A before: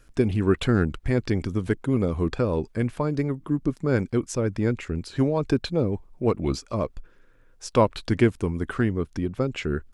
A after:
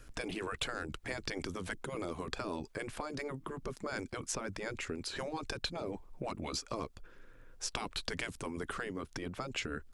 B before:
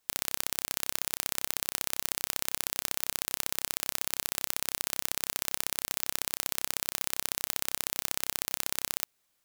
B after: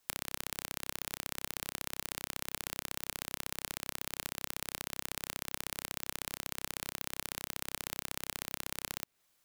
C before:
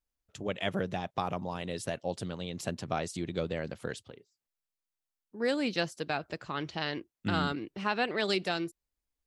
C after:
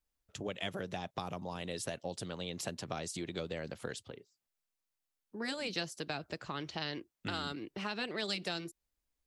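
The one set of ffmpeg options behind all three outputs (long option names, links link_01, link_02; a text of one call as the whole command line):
ffmpeg -i in.wav -filter_complex "[0:a]afftfilt=real='re*lt(hypot(re,im),0.282)':imag='im*lt(hypot(re,im),0.282)':win_size=1024:overlap=0.75,acrossover=split=360|3700[link_01][link_02][link_03];[link_01]acompressor=threshold=-45dB:ratio=4[link_04];[link_02]acompressor=threshold=-41dB:ratio=4[link_05];[link_03]acompressor=threshold=-38dB:ratio=4[link_06];[link_04][link_05][link_06]amix=inputs=3:normalize=0,volume=1.5dB" out.wav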